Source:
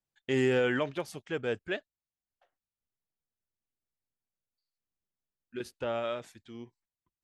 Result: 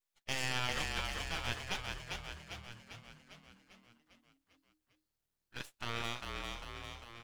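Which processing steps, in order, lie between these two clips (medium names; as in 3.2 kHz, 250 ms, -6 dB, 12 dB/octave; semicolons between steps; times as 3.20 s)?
spectral gate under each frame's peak -15 dB weak; dynamic bell 5.8 kHz, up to +7 dB, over -58 dBFS, Q 0.99; in parallel at +2 dB: compression, threshold -48 dBFS, peak gain reduction 15.5 dB; on the sum: half-wave rectifier; on a send: frequency-shifting echo 399 ms, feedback 58%, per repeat -39 Hz, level -3.5 dB; on the sum: trim +1.5 dB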